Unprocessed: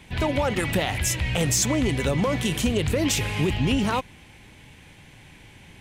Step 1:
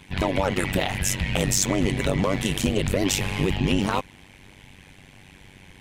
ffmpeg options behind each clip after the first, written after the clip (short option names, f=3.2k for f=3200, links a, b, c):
-af "tremolo=f=96:d=0.947,volume=4dB"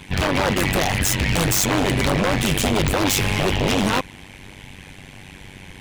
-af "aeval=exprs='0.0944*(abs(mod(val(0)/0.0944+3,4)-2)-1)':c=same,volume=8dB"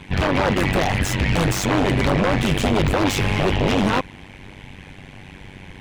-af "lowpass=f=2.5k:p=1,volume=1.5dB"